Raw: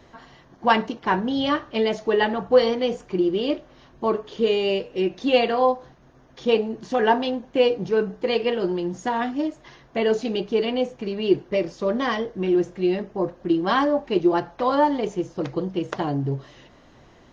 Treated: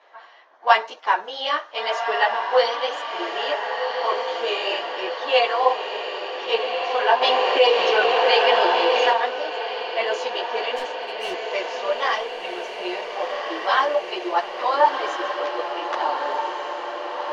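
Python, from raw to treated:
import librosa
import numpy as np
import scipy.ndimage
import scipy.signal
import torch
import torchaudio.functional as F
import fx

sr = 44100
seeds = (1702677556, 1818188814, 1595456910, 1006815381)

y = scipy.signal.sosfilt(scipy.signal.butter(4, 590.0, 'highpass', fs=sr, output='sos'), x)
y = fx.env_lowpass(y, sr, base_hz=2800.0, full_db=-24.0)
y = fx.clip_hard(y, sr, threshold_db=-32.0, at=(10.74, 11.46))
y = fx.chorus_voices(y, sr, voices=2, hz=0.97, base_ms=13, depth_ms=4.2, mix_pct=55)
y = fx.echo_diffused(y, sr, ms=1450, feedback_pct=67, wet_db=-5.0)
y = fx.env_flatten(y, sr, amount_pct=50, at=(7.21, 9.12), fade=0.02)
y = y * librosa.db_to_amplitude(6.0)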